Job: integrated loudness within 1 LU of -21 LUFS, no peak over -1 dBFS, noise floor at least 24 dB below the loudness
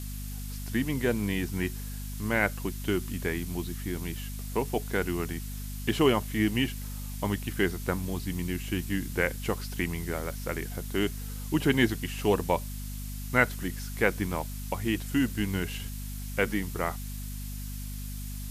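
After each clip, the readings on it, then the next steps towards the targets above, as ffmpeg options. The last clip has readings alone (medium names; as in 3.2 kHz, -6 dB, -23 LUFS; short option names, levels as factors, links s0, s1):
hum 50 Hz; highest harmonic 250 Hz; hum level -35 dBFS; noise floor -37 dBFS; noise floor target -55 dBFS; loudness -30.5 LUFS; peak level -8.0 dBFS; loudness target -21.0 LUFS
-> -af "bandreject=f=50:t=h:w=4,bandreject=f=100:t=h:w=4,bandreject=f=150:t=h:w=4,bandreject=f=200:t=h:w=4,bandreject=f=250:t=h:w=4"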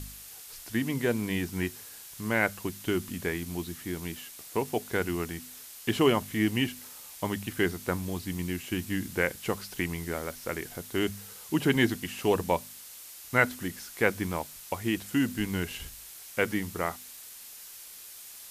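hum not found; noise floor -47 dBFS; noise floor target -55 dBFS
-> -af "afftdn=nr=8:nf=-47"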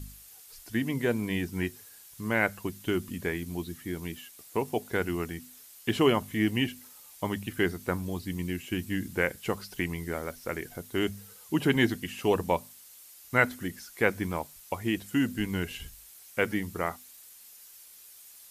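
noise floor -52 dBFS; noise floor target -55 dBFS
-> -af "afftdn=nr=6:nf=-52"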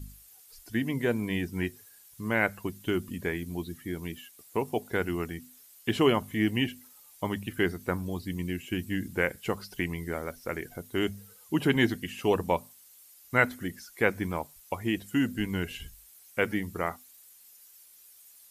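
noise floor -56 dBFS; loudness -31.0 LUFS; peak level -8.0 dBFS; loudness target -21.0 LUFS
-> -af "volume=3.16,alimiter=limit=0.891:level=0:latency=1"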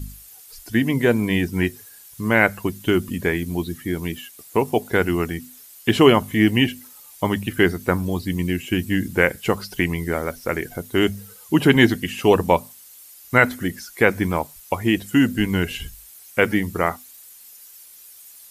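loudness -21.0 LUFS; peak level -1.0 dBFS; noise floor -46 dBFS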